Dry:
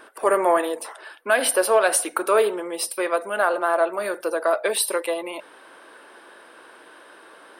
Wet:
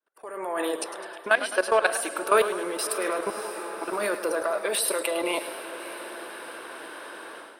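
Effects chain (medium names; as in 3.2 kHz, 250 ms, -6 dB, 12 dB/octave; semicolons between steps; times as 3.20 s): fade-in on the opening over 0.63 s; level held to a coarse grid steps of 17 dB; 0.81–1.86 s: low-pass 7.1 kHz 12 dB/octave; dynamic bell 520 Hz, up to -6 dB, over -34 dBFS, Q 0.8; 3.30–3.88 s: vowel filter u; echo that smears into a reverb 598 ms, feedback 56%, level -14.5 dB; level rider gain up to 15.5 dB; modulated delay 105 ms, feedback 57%, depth 81 cents, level -12 dB; trim -6 dB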